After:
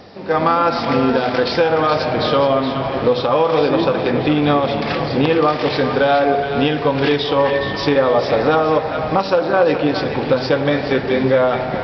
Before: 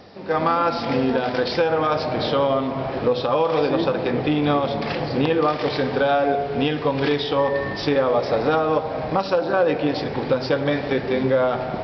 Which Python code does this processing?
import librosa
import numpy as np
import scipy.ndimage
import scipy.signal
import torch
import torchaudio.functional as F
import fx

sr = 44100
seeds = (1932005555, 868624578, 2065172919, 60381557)

y = fx.echo_banded(x, sr, ms=421, feedback_pct=46, hz=2200.0, wet_db=-6)
y = F.gain(torch.from_numpy(y), 4.5).numpy()